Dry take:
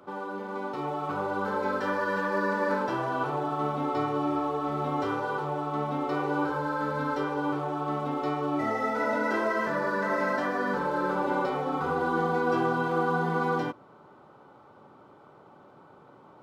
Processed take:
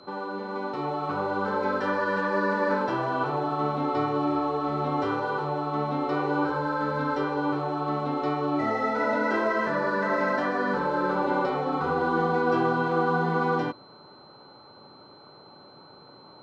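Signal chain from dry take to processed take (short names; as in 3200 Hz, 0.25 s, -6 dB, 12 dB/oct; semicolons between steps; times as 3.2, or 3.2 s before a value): air absorption 74 m; whine 4100 Hz -56 dBFS; gain +2.5 dB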